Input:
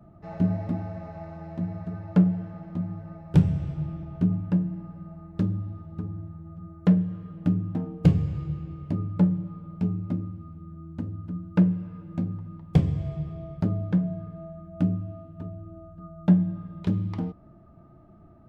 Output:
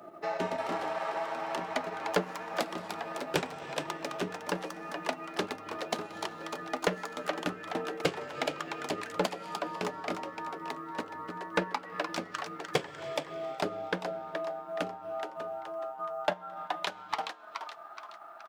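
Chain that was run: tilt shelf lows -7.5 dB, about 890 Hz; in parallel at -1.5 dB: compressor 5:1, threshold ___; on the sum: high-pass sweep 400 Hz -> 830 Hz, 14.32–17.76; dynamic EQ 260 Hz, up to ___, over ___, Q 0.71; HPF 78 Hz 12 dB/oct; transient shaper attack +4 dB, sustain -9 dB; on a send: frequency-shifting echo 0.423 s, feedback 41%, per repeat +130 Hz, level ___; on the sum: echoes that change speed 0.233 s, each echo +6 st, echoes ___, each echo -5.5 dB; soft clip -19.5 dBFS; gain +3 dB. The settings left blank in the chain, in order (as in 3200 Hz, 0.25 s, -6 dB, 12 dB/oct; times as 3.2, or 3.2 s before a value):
-42 dBFS, -6 dB, -48 dBFS, -7.5 dB, 2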